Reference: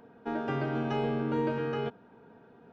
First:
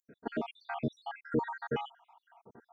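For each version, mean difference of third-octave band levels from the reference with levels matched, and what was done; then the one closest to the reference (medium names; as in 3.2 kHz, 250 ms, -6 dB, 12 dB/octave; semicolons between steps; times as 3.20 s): 14.0 dB: random holes in the spectrogram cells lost 79%; band-stop 4.1 kHz, Q 14; trim +3.5 dB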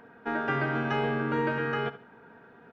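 2.0 dB: peaking EQ 1.7 kHz +11 dB 1.3 oct; on a send: feedback delay 72 ms, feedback 29%, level -15.5 dB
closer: second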